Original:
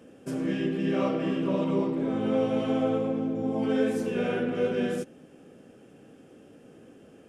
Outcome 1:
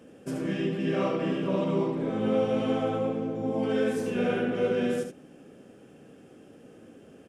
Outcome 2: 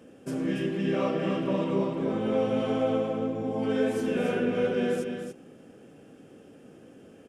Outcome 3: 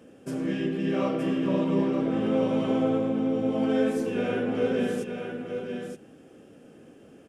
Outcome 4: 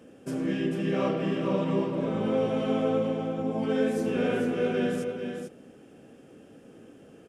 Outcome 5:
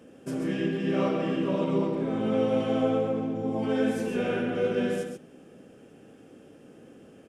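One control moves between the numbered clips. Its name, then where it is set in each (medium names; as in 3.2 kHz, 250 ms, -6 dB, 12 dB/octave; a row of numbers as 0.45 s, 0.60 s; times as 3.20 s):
delay, time: 74 ms, 286 ms, 921 ms, 445 ms, 134 ms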